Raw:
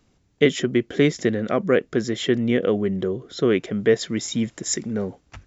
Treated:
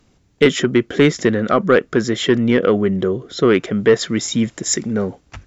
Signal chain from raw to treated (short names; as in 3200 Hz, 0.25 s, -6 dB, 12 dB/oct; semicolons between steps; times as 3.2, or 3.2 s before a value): dynamic EQ 1300 Hz, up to +8 dB, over -43 dBFS, Q 2.2; in parallel at -11 dB: sine folder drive 7 dB, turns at -2.5 dBFS